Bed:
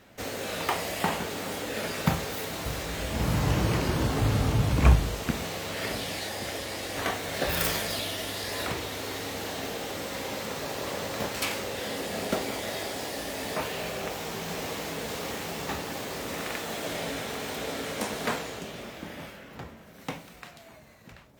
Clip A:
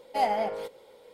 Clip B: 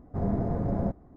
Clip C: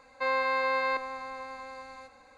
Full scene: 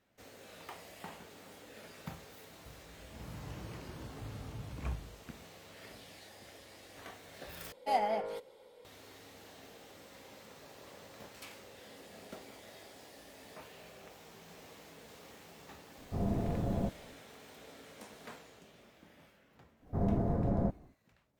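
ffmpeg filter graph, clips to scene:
ffmpeg -i bed.wav -i cue0.wav -i cue1.wav -filter_complex "[2:a]asplit=2[link_01][link_02];[0:a]volume=-20dB,asplit=2[link_03][link_04];[link_03]atrim=end=7.724[link_05];[1:a]atrim=end=1.13,asetpts=PTS-STARTPTS,volume=-5dB[link_06];[link_04]atrim=start=8.846[link_07];[link_01]atrim=end=1.16,asetpts=PTS-STARTPTS,volume=-5.5dB,afade=type=in:duration=0.004:curve=hsin,afade=type=out:start_time=1.156:duration=0.004:curve=hsin,adelay=15980[link_08];[link_02]atrim=end=1.16,asetpts=PTS-STARTPTS,volume=-3dB,afade=type=in:duration=0.1,afade=type=out:start_time=1.06:duration=0.1,adelay=19790[link_09];[link_05][link_06]acrossfade=duration=0.004:curve1=hsin:curve2=hsin[link_10];[link_10][link_07]acrossfade=duration=0.004:curve1=hsin:curve2=hsin[link_11];[link_11][link_08][link_09]amix=inputs=3:normalize=0" out.wav

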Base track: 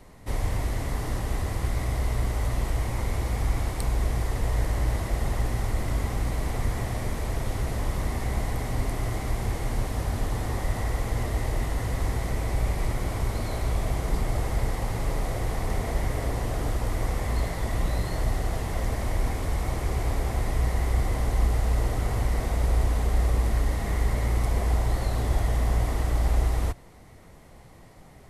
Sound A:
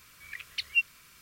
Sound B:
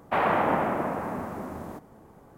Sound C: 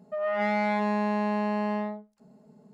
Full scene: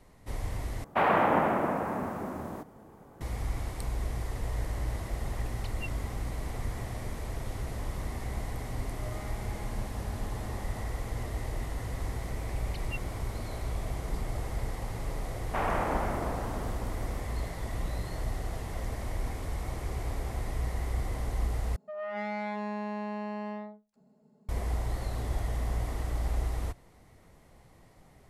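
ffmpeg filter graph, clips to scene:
ffmpeg -i bed.wav -i cue0.wav -i cue1.wav -i cue2.wav -filter_complex "[2:a]asplit=2[link_01][link_02];[1:a]asplit=2[link_03][link_04];[3:a]asplit=2[link_05][link_06];[0:a]volume=-7.5dB[link_07];[link_05]acompressor=threshold=-30dB:ratio=6:attack=3.2:release=140:knee=1:detection=peak[link_08];[link_07]asplit=3[link_09][link_10][link_11];[link_09]atrim=end=0.844[link_12];[link_01]atrim=end=2.37,asetpts=PTS-STARTPTS,volume=-0.5dB[link_13];[link_10]atrim=start=3.206:end=21.764[link_14];[link_06]atrim=end=2.73,asetpts=PTS-STARTPTS,volume=-8.5dB[link_15];[link_11]atrim=start=24.486[link_16];[link_03]atrim=end=1.21,asetpts=PTS-STARTPTS,volume=-17dB,afade=type=in:duration=0.004:curve=hsin,afade=type=out:start_time=1.206:duration=0.004:curve=hsin,adelay=5060[link_17];[link_08]atrim=end=2.73,asetpts=PTS-STARTPTS,volume=-14dB,afade=type=in:duration=0.004:curve=hsin,afade=type=out:start_time=2.726:duration=0.004:curve=hsin,adelay=8860[link_18];[link_04]atrim=end=1.21,asetpts=PTS-STARTPTS,volume=-16dB,afade=type=in:duration=0.004:curve=hsin,afade=type=out:start_time=1.206:duration=0.004:curve=hsin,adelay=12160[link_19];[link_02]atrim=end=2.37,asetpts=PTS-STARTPTS,volume=-7dB,afade=type=in:duration=0.004:curve=hsin,afade=type=out:start_time=2.366:duration=0.004:curve=hsin,adelay=15420[link_20];[link_12][link_13]acrossfade=duration=0.004:curve1=hsin:curve2=hsin[link_21];[link_21][link_14]acrossfade=duration=0.004:curve1=hsin:curve2=hsin[link_22];[link_22][link_15]acrossfade=duration=0.004:curve1=hsin:curve2=hsin[link_23];[link_23][link_16]acrossfade=duration=0.004:curve1=hsin:curve2=hsin[link_24];[link_24][link_17][link_18][link_19][link_20]amix=inputs=5:normalize=0" out.wav

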